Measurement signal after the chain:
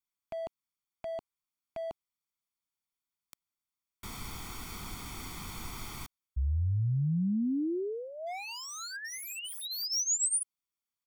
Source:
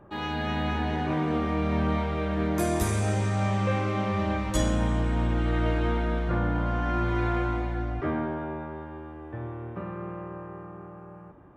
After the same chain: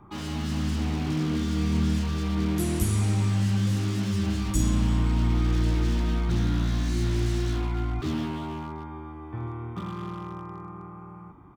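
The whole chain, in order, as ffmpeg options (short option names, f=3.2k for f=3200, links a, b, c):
-filter_complex "[0:a]lowshelf=f=170:g=-2,aecho=1:1:0.9:0.78,acrossover=split=490|5300[a][b][c];[b]aeval=exprs='0.0158*(abs(mod(val(0)/0.0158+3,4)-2)-1)':c=same[d];[a][d][c]amix=inputs=3:normalize=0"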